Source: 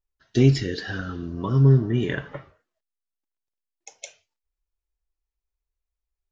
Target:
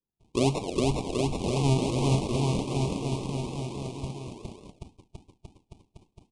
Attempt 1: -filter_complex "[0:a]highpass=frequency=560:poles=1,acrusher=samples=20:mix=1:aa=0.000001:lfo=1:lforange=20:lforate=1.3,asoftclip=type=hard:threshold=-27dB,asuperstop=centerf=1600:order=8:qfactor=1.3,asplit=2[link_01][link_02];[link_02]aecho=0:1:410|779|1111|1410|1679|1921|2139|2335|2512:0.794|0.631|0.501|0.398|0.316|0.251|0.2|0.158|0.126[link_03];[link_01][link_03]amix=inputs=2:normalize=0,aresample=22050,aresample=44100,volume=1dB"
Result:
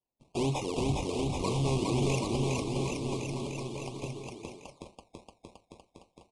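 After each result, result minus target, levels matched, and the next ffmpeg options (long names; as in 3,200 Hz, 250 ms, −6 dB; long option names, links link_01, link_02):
hard clipping: distortion +21 dB; sample-and-hold swept by an LFO: distortion −9 dB
-filter_complex "[0:a]highpass=frequency=560:poles=1,acrusher=samples=20:mix=1:aa=0.000001:lfo=1:lforange=20:lforate=1.3,asoftclip=type=hard:threshold=-15.5dB,asuperstop=centerf=1600:order=8:qfactor=1.3,asplit=2[link_01][link_02];[link_02]aecho=0:1:410|779|1111|1410|1679|1921|2139|2335|2512:0.794|0.631|0.501|0.398|0.316|0.251|0.2|0.158|0.126[link_03];[link_01][link_03]amix=inputs=2:normalize=0,aresample=22050,aresample=44100,volume=1dB"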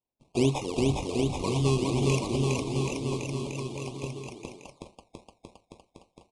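sample-and-hold swept by an LFO: distortion −9 dB
-filter_complex "[0:a]highpass=frequency=560:poles=1,acrusher=samples=56:mix=1:aa=0.000001:lfo=1:lforange=56:lforate=1.3,asoftclip=type=hard:threshold=-15.5dB,asuperstop=centerf=1600:order=8:qfactor=1.3,asplit=2[link_01][link_02];[link_02]aecho=0:1:410|779|1111|1410|1679|1921|2139|2335|2512:0.794|0.631|0.501|0.398|0.316|0.251|0.2|0.158|0.126[link_03];[link_01][link_03]amix=inputs=2:normalize=0,aresample=22050,aresample=44100,volume=1dB"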